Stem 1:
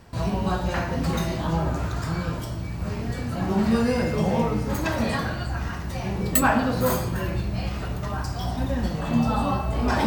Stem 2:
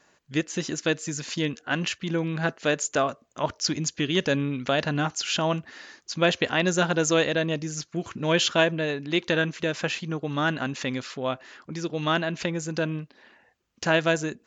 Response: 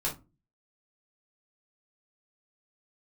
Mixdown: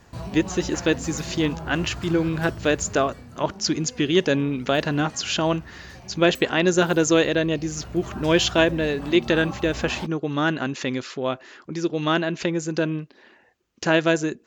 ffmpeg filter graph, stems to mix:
-filter_complex "[0:a]acompressor=threshold=0.0501:ratio=6,volume=1.68,afade=t=out:st=2.7:d=0.57:silence=0.334965,afade=t=in:st=7.55:d=0.62:silence=0.375837[s0];[1:a]equalizer=f=360:t=o:w=0.57:g=6.5,volume=1.19[s1];[s0][s1]amix=inputs=2:normalize=0"

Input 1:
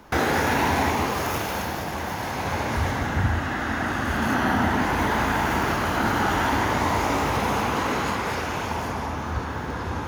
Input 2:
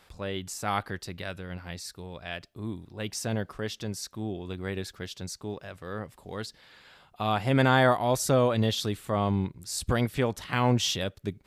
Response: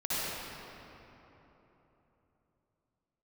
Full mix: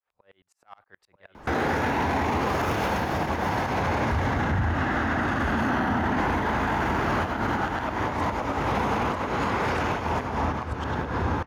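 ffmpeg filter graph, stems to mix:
-filter_complex "[0:a]lowpass=f=2200:p=1,adelay=1350,volume=0.668,asplit=2[s0][s1];[s1]volume=0.0944[s2];[1:a]acrossover=split=500 2300:gain=0.158 1 0.141[s3][s4][s5];[s3][s4][s5]amix=inputs=3:normalize=0,asoftclip=type=tanh:threshold=0.0891,aeval=exprs='val(0)*pow(10,-32*if(lt(mod(-9.5*n/s,1),2*abs(-9.5)/1000),1-mod(-9.5*n/s,1)/(2*abs(-9.5)/1000),(mod(-9.5*n/s,1)-2*abs(-9.5)/1000)/(1-2*abs(-9.5)/1000))/20)':c=same,volume=0.335,asplit=3[s6][s7][s8];[s7]volume=0.501[s9];[s8]apad=whole_len=504005[s10];[s0][s10]sidechaincompress=threshold=0.00158:ratio=8:attack=20:release=153[s11];[s2][s9]amix=inputs=2:normalize=0,aecho=0:1:940:1[s12];[s11][s6][s12]amix=inputs=3:normalize=0,dynaudnorm=f=220:g=11:m=2.99,alimiter=limit=0.141:level=0:latency=1:release=27"

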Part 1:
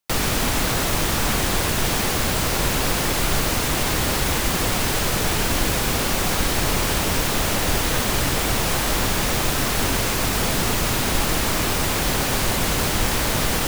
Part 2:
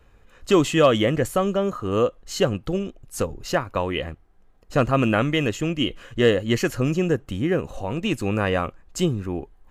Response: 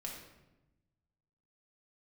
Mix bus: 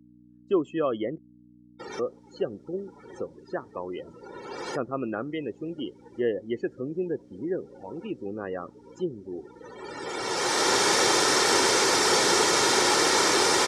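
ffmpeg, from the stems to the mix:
-filter_complex "[0:a]aecho=1:1:2.2:0.37,adelay=1700,volume=1.33[s0];[1:a]lowshelf=f=260:g=11.5,volume=0.299,asplit=3[s1][s2][s3];[s1]atrim=end=1.18,asetpts=PTS-STARTPTS,afade=t=out:st=1.176:d=0.004:c=hsin[s4];[s2]atrim=start=1.18:end=1.99,asetpts=PTS-STARTPTS,volume=0[s5];[s3]atrim=start=1.99,asetpts=PTS-STARTPTS,afade=t=in:d=0.004:c=hsin[s6];[s4][s5][s6]concat=n=3:v=0:a=1,asplit=2[s7][s8];[s8]apad=whole_len=682475[s9];[s0][s9]sidechaincompress=threshold=0.00631:ratio=12:attack=8.8:release=1020[s10];[s10][s7]amix=inputs=2:normalize=0,afftdn=nr=32:nf=-32,aeval=exprs='val(0)+0.0126*(sin(2*PI*60*n/s)+sin(2*PI*2*60*n/s)/2+sin(2*PI*3*60*n/s)/3+sin(2*PI*4*60*n/s)/4+sin(2*PI*5*60*n/s)/5)':c=same,highpass=360,equalizer=f=370:t=q:w=4:g=5,equalizer=f=610:t=q:w=4:g=-3,equalizer=f=2700:t=q:w=4:g=-7,equalizer=f=5500:t=q:w=4:g=5,lowpass=f=9000:w=0.5412,lowpass=f=9000:w=1.3066"

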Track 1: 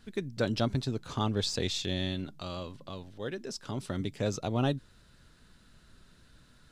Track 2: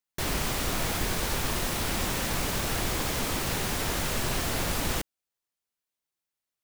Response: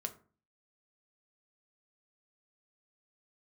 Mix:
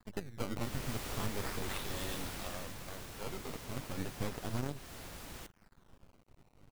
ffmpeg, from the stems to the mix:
-filter_complex "[0:a]acrusher=samples=15:mix=1:aa=0.000001:lfo=1:lforange=24:lforate=0.35,aeval=exprs='max(val(0),0)':c=same,tremolo=f=100:d=0.571,volume=1.26[s0];[1:a]adelay=450,volume=0.251,afade=t=out:st=2.13:d=0.62:silence=0.446684[s1];[s0][s1]amix=inputs=2:normalize=0,alimiter=level_in=1.06:limit=0.0631:level=0:latency=1:release=266,volume=0.944"

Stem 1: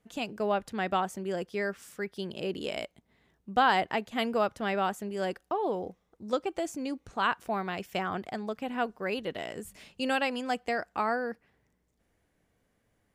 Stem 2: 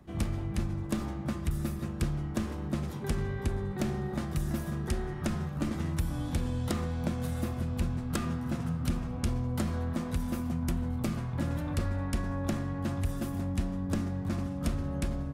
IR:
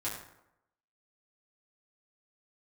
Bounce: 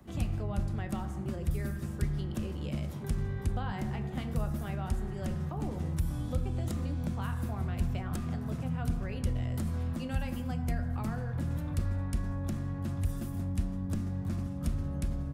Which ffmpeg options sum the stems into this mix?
-filter_complex "[0:a]volume=0.562,asplit=2[s0][s1];[s1]volume=0.531[s2];[1:a]highshelf=f=7400:g=7,volume=1.06[s3];[2:a]atrim=start_sample=2205[s4];[s2][s4]afir=irnorm=-1:irlink=0[s5];[s0][s3][s5]amix=inputs=3:normalize=0,acrossover=split=200[s6][s7];[s7]acompressor=threshold=0.00501:ratio=2.5[s8];[s6][s8]amix=inputs=2:normalize=0"

